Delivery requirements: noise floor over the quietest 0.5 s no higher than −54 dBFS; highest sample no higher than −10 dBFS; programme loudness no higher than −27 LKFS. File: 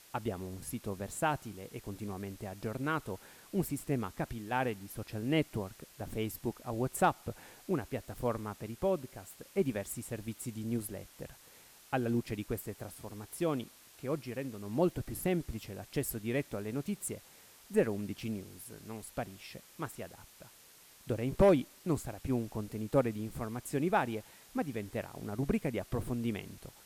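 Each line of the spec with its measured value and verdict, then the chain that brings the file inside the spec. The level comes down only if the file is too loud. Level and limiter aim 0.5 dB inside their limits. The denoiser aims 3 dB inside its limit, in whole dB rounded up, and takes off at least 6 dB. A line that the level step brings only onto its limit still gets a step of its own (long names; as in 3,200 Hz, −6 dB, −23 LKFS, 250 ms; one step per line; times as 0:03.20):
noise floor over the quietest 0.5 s −59 dBFS: in spec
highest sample −16.5 dBFS: in spec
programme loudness −36.0 LKFS: in spec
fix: no processing needed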